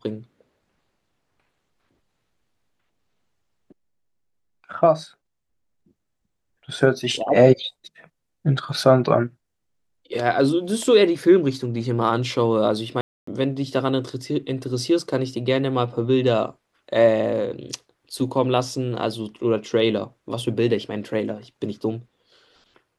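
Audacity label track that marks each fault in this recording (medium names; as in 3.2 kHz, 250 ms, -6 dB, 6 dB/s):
13.010000	13.270000	dropout 264 ms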